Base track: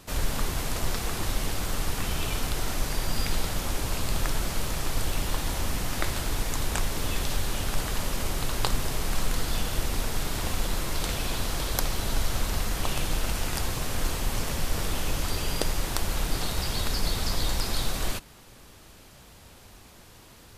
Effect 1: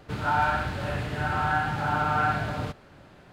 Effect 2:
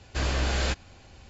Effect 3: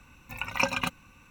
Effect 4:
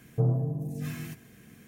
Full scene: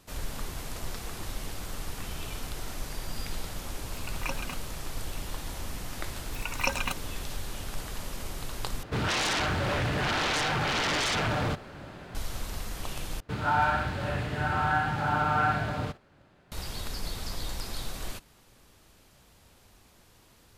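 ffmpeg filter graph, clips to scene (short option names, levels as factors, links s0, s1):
-filter_complex "[3:a]asplit=2[s0][s1];[1:a]asplit=2[s2][s3];[0:a]volume=0.398[s4];[s1]bass=f=250:g=-5,treble=f=4000:g=4[s5];[s2]aeval=exprs='0.266*sin(PI/2*7.08*val(0)/0.266)':c=same[s6];[s3]agate=range=0.398:threshold=0.00355:ratio=16:release=100:detection=peak[s7];[s4]asplit=3[s8][s9][s10];[s8]atrim=end=8.834[s11];[s6]atrim=end=3.32,asetpts=PTS-STARTPTS,volume=0.211[s12];[s9]atrim=start=12.146:end=13.204[s13];[s7]atrim=end=3.32,asetpts=PTS-STARTPTS,volume=0.891[s14];[s10]atrim=start=16.516[s15];[s0]atrim=end=1.3,asetpts=PTS-STARTPTS,volume=0.316,afade=t=in:d=0.004:c=hsin,afade=t=out:st=1.296:d=0.004:c=hsin,adelay=3660[s16];[s5]atrim=end=1.3,asetpts=PTS-STARTPTS,volume=0.708,afade=t=in:d=0.004:c=hsin,afade=t=out:st=1.296:d=0.004:c=hsin,adelay=6040[s17];[s11][s12]acrossfade=d=0.004:c1=hsin:c2=hsin[s18];[s18][s13]acrossfade=d=0.004:c1=hsin:c2=hsin[s19];[s19][s14]acrossfade=d=0.004:c1=hsin:c2=hsin[s20];[s20][s15]acrossfade=d=0.004:c1=hsin:c2=hsin[s21];[s21][s16][s17]amix=inputs=3:normalize=0"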